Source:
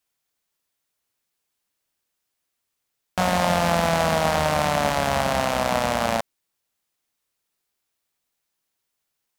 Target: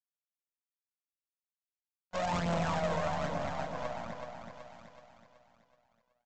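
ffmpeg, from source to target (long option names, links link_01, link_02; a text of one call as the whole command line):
ffmpeg -i in.wav -filter_complex "[0:a]agate=range=-56dB:threshold=-18dB:ratio=16:detection=peak,highpass=84,highshelf=frequency=5600:gain=-4.5,asplit=2[link_01][link_02];[link_02]acrusher=bits=5:dc=4:mix=0:aa=0.000001,volume=-6.5dB[link_03];[link_01][link_03]amix=inputs=2:normalize=0,aphaser=in_gain=1:out_gain=1:delay=2.1:decay=0.58:speed=0.79:type=triangular,aresample=16000,asoftclip=type=tanh:threshold=-28.5dB,aresample=44100,atempo=1.5,aecho=1:1:376|752|1128|1504|1880|2256:0.531|0.255|0.122|0.0587|0.0282|0.0135,adynamicequalizer=threshold=0.00282:dfrequency=1900:dqfactor=0.7:tfrequency=1900:tqfactor=0.7:attack=5:release=100:ratio=0.375:range=2:mode=cutabove:tftype=highshelf" out.wav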